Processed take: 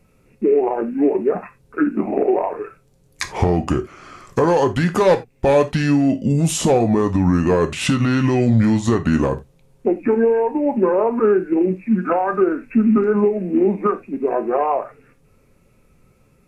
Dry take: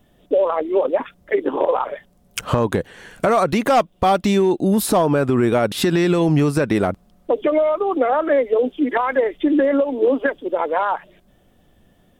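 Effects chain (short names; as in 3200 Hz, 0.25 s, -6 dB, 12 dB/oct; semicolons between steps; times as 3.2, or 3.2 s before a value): varispeed -26%; non-linear reverb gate 0.11 s falling, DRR 7.5 dB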